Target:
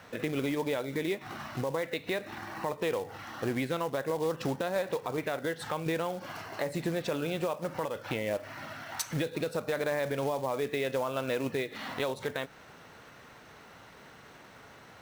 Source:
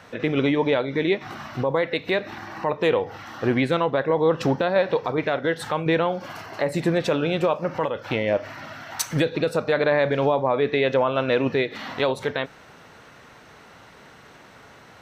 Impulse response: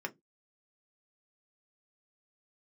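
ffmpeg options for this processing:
-af "acrusher=bits=4:mode=log:mix=0:aa=0.000001,acompressor=threshold=0.0398:ratio=2,volume=0.596"

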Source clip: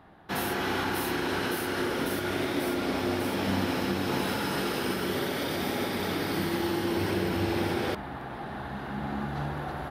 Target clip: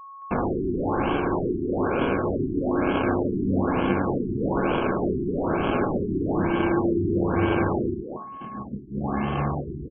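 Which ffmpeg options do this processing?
-filter_complex "[0:a]agate=range=0.00178:threshold=0.02:ratio=16:detection=peak,asettb=1/sr,asplit=3[s0][s1][s2];[s0]atrim=end=8.114[s3];[s1]atrim=start=8.11:end=8.75,asetpts=PTS-STARTPTS,afade=t=in:d=0.004:c=qsin,afade=t=out:st=0.636:d=0.004:c=qsin,equalizer=f=220:t=o:w=0.95:g=13.5[s4];[s2]atrim=start=8.746[s5];[s3][s4]acrossfade=d=0.004:c1=hsin:c2=qsin[s6];[s6][s5]acrossfade=d=0.004:c1=qsin:c2=hsin,asplit=2[s7][s8];[s8]alimiter=limit=0.0631:level=0:latency=1:release=435,volume=0.794[s9];[s7][s9]amix=inputs=2:normalize=0,acrusher=samples=23:mix=1:aa=0.000001,aeval=exprs='val(0)+0.00794*sin(2*PI*1100*n/s)':c=same,asplit=2[s10][s11];[s11]adelay=220,highpass=300,lowpass=3400,asoftclip=type=hard:threshold=0.075,volume=0.501[s12];[s10][s12]amix=inputs=2:normalize=0,afftfilt=real='re*lt(b*sr/1024,390*pow(3400/390,0.5+0.5*sin(2*PI*1.1*pts/sr)))':imag='im*lt(b*sr/1024,390*pow(3400/390,0.5+0.5*sin(2*PI*1.1*pts/sr)))':win_size=1024:overlap=0.75,volume=1.33"

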